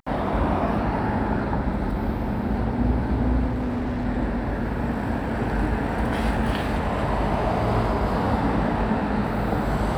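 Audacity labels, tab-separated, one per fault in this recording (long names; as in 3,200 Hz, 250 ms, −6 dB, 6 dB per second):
3.490000	4.070000	clipping −22.5 dBFS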